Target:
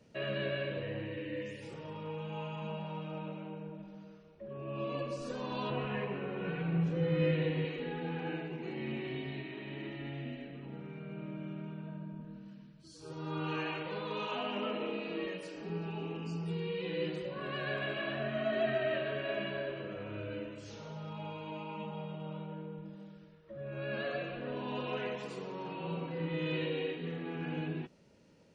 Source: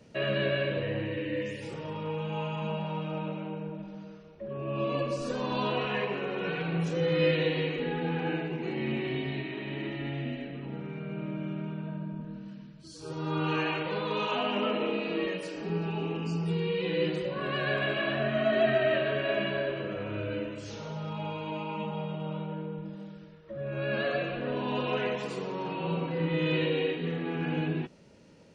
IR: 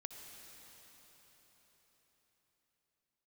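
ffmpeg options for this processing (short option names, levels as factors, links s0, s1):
-filter_complex "[0:a]asettb=1/sr,asplit=3[s0][s1][s2];[s0]atrim=end=5.704[s3];[s1]atrim=start=5.7:end=7.65,asetpts=PTS-STARTPTS,afade=t=in:d=0.004:c=qsin,afade=t=out:st=1.946:d=0.004:c=qsin,bass=f=250:g=8,treble=f=4000:g=-14[s4];[s2]atrim=start=7.646[s5];[s3][s4]acrossfade=d=0.004:c1=hsin:c2=qsin[s6];[s6][s5]acrossfade=d=0.004:c1=qsin:c2=hsin,volume=0.447"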